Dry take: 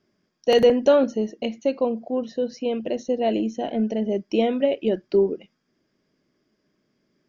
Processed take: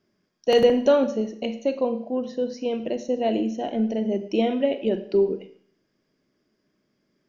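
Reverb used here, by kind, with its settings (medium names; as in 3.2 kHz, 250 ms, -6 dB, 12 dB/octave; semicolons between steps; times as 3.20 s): Schroeder reverb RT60 0.59 s, combs from 32 ms, DRR 10 dB; trim -1.5 dB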